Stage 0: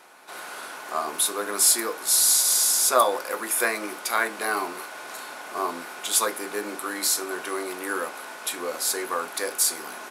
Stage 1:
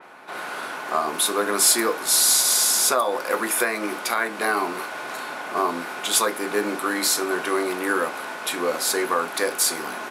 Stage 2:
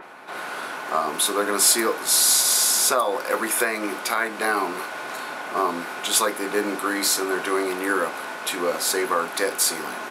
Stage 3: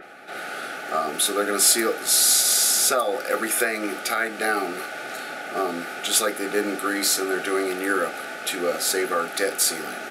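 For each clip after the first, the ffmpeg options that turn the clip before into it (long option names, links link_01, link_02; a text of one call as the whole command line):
ffmpeg -i in.wav -af "bass=frequency=250:gain=5,treble=frequency=4000:gain=-13,alimiter=limit=-17dB:level=0:latency=1:release=293,adynamicequalizer=threshold=0.00501:dfrequency=3500:dqfactor=0.7:tfrequency=3500:tqfactor=0.7:attack=5:release=100:ratio=0.375:range=3.5:mode=boostabove:tftype=highshelf,volume=6.5dB" out.wav
ffmpeg -i in.wav -af "acompressor=mode=upward:threshold=-38dB:ratio=2.5" out.wav
ffmpeg -i in.wav -af "asuperstop=centerf=1000:order=12:qfactor=3.4" out.wav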